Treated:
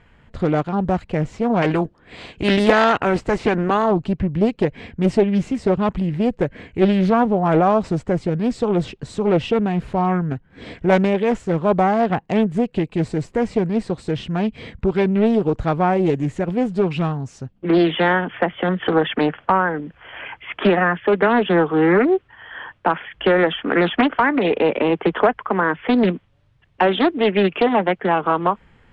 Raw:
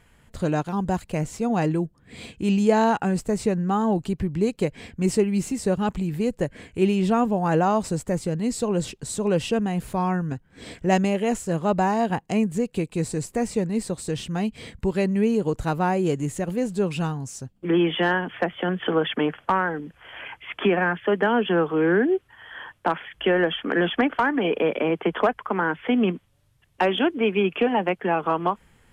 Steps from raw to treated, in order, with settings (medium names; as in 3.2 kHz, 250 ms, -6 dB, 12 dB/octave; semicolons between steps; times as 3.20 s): 1.61–3.90 s: spectral peaks clipped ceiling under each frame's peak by 16 dB; low-pass 3.2 kHz 12 dB/octave; loudspeaker Doppler distortion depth 0.43 ms; trim +5 dB